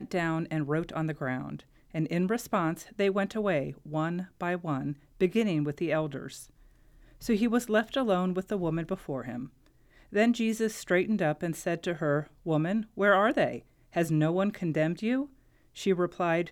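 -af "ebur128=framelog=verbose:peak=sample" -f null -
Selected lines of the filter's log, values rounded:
Integrated loudness:
  I:         -29.5 LUFS
  Threshold: -40.1 LUFS
Loudness range:
  LRA:         3.1 LU
  Threshold: -49.9 LUFS
  LRA low:   -31.2 LUFS
  LRA high:  -28.1 LUFS
Sample peak:
  Peak:      -11.6 dBFS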